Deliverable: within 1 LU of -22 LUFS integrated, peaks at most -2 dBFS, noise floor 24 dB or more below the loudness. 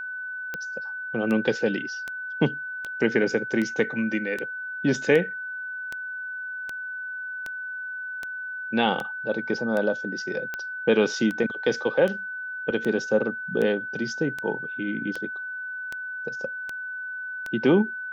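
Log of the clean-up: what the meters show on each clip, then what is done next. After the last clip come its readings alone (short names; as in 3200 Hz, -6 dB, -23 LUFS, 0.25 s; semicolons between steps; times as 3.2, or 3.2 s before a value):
clicks 23; steady tone 1500 Hz; tone level -31 dBFS; loudness -27.0 LUFS; peak -7.5 dBFS; loudness target -22.0 LUFS
-> de-click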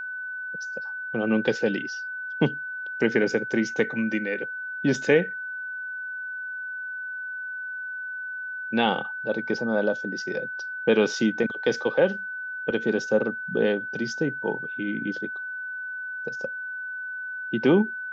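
clicks 0; steady tone 1500 Hz; tone level -31 dBFS
-> notch 1500 Hz, Q 30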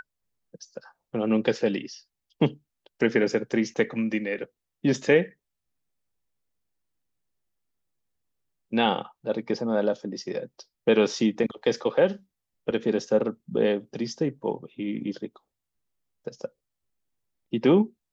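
steady tone none; loudness -26.5 LUFS; peak -8.0 dBFS; loudness target -22.0 LUFS
-> gain +4.5 dB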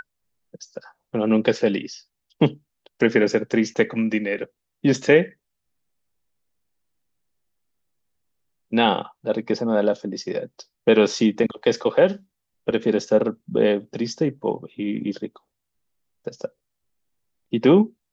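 loudness -22.0 LUFS; peak -3.5 dBFS; noise floor -79 dBFS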